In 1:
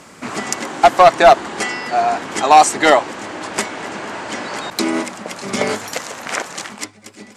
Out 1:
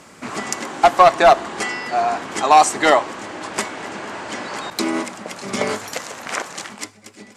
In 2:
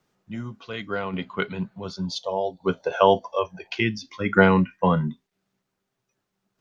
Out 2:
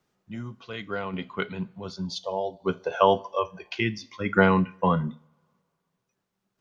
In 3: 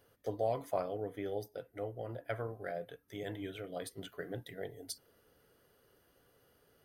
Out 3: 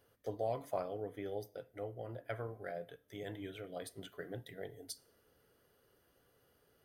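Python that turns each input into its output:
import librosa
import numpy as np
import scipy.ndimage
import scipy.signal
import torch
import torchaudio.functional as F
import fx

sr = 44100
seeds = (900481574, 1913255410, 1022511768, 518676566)

y = fx.dynamic_eq(x, sr, hz=1100.0, q=5.4, threshold_db=-34.0, ratio=4.0, max_db=4)
y = fx.rev_double_slope(y, sr, seeds[0], early_s=0.53, late_s=2.5, knee_db=-26, drr_db=18.0)
y = F.gain(torch.from_numpy(y), -3.0).numpy()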